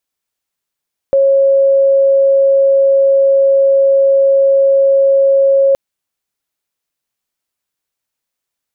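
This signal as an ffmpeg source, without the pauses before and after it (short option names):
-f lavfi -i "aevalsrc='0.473*sin(2*PI*547*t)':d=4.62:s=44100"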